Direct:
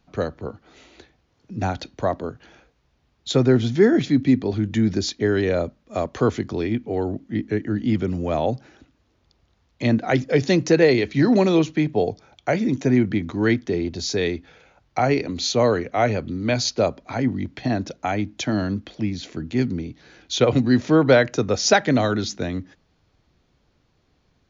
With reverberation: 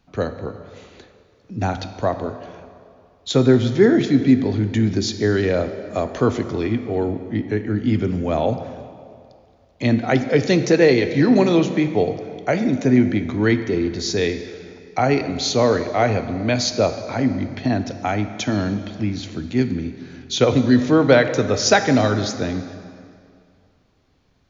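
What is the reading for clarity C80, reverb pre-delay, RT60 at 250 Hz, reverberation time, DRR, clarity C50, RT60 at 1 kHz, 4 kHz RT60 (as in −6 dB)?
11.0 dB, 5 ms, 2.2 s, 2.3 s, 8.5 dB, 10.0 dB, 2.3 s, 1.8 s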